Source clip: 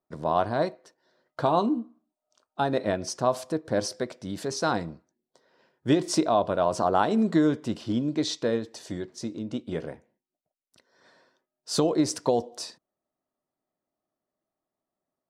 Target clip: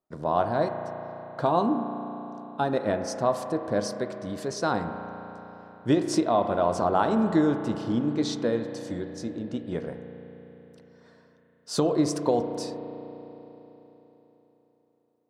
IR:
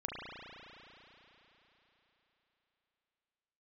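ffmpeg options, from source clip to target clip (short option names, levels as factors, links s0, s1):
-filter_complex "[0:a]asplit=2[s0][s1];[1:a]atrim=start_sample=2205,lowpass=2300[s2];[s1][s2]afir=irnorm=-1:irlink=0,volume=0.531[s3];[s0][s3]amix=inputs=2:normalize=0,volume=0.708"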